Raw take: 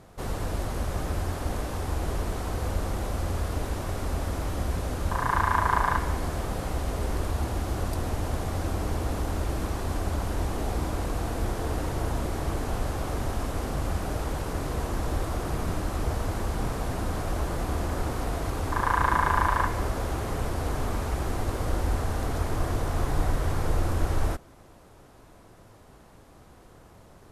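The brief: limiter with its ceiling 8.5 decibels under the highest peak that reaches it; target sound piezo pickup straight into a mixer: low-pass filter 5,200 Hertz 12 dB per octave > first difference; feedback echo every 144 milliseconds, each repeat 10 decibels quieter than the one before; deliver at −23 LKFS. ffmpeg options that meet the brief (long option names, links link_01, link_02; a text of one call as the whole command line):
ffmpeg -i in.wav -af "alimiter=limit=-16dB:level=0:latency=1,lowpass=5200,aderivative,aecho=1:1:144|288|432|576:0.316|0.101|0.0324|0.0104,volume=25.5dB" out.wav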